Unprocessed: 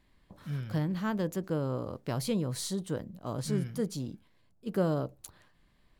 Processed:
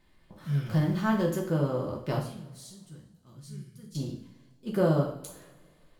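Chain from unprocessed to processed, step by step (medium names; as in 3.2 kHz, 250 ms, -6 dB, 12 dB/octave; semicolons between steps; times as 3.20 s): 0.66–1.24 s: jump at every zero crossing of -45 dBFS; 2.19–3.95 s: amplifier tone stack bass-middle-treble 6-0-2; two-slope reverb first 0.48 s, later 1.9 s, from -20 dB, DRR -2 dB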